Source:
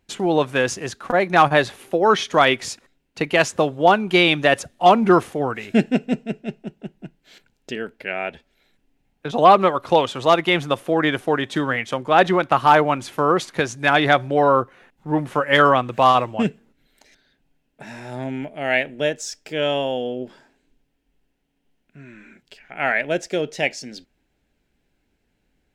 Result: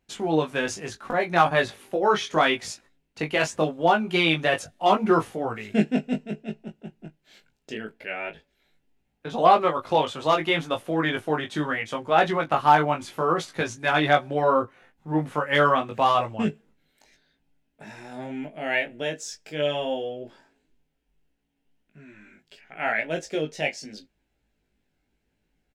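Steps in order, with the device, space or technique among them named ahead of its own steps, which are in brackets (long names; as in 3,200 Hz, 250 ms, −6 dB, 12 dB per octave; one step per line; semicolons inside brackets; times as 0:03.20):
double-tracked vocal (double-tracking delay 19 ms −10 dB; chorus effect 0.74 Hz, delay 17.5 ms, depth 2.9 ms)
level −2.5 dB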